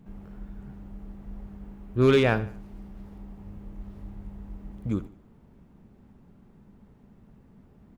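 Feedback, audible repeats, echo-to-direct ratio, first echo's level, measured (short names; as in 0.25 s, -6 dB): 40%, 3, -16.5 dB, -17.0 dB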